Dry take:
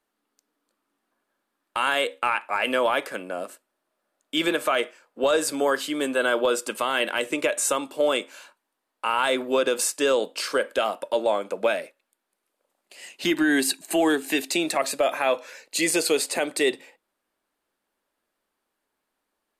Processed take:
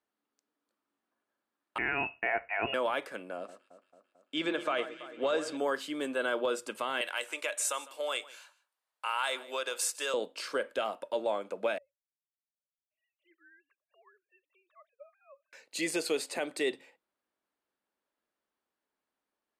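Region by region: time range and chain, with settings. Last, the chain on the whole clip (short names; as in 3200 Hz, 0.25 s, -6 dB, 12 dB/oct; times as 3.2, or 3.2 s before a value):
1.78–2.74 HPF 42 Hz + inverted band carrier 3100 Hz + bell 690 Hz +12.5 dB 0.21 oct
3.37–5.57 LPF 6900 Hz + echo with dull and thin repeats by turns 0.111 s, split 1900 Hz, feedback 78%, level -11.5 dB
7.01–10.14 HPF 700 Hz + high shelf 4200 Hz +7.5 dB + echo 0.154 s -19 dB
11.78–15.53 sine-wave speech + double band-pass 790 Hz, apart 1 oct + differentiator
whole clip: HPF 42 Hz; high shelf 7800 Hz -8.5 dB; notches 60/120 Hz; gain -8.5 dB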